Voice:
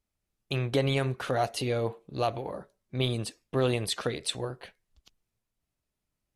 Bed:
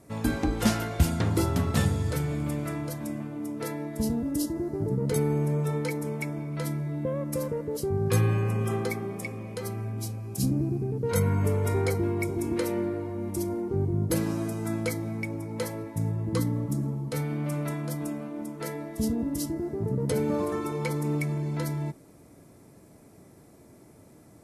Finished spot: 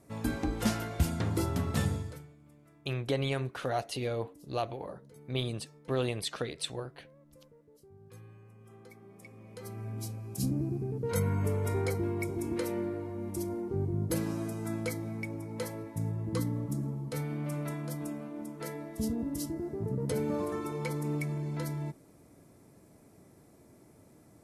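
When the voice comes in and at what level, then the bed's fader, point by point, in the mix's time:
2.35 s, −4.5 dB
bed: 0:01.95 −5.5 dB
0:02.36 −28.5 dB
0:08.58 −28.5 dB
0:09.93 −5 dB

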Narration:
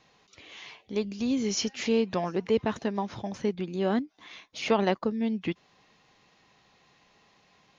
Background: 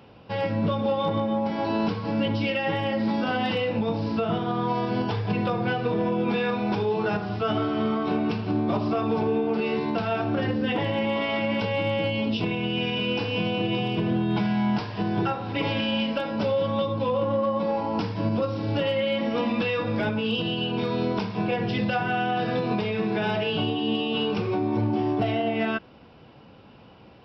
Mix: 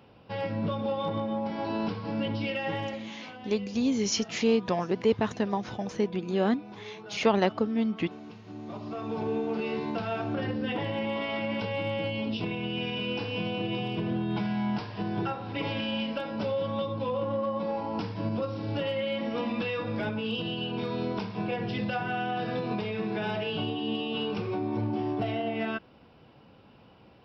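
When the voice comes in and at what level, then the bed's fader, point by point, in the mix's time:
2.55 s, +1.0 dB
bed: 0:02.83 −5.5 dB
0:03.14 −19.5 dB
0:08.40 −19.5 dB
0:09.32 −5.5 dB

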